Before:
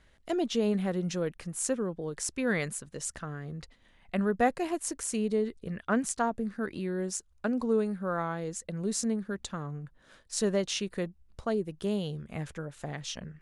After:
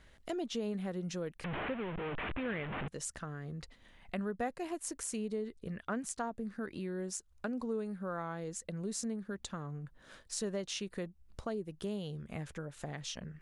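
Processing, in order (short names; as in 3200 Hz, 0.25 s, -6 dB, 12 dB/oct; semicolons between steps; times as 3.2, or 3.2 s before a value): 1.44–2.88 delta modulation 16 kbps, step -27 dBFS; compressor 2:1, threshold -45 dBFS, peak gain reduction 14 dB; gain +2 dB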